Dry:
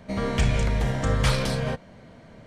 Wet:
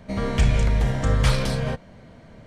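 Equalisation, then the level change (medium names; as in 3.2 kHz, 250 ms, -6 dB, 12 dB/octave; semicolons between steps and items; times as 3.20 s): bass shelf 97 Hz +6 dB; 0.0 dB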